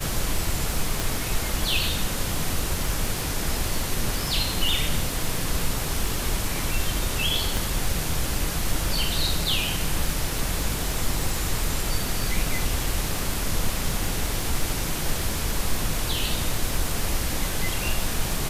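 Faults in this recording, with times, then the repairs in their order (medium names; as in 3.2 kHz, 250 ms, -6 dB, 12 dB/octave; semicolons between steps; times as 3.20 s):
crackle 35 per s -28 dBFS
1.00 s: pop
7.57 s: pop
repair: de-click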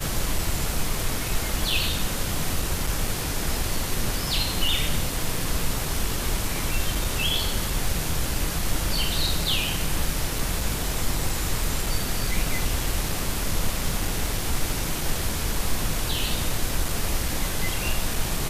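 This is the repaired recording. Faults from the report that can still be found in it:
1.00 s: pop
7.57 s: pop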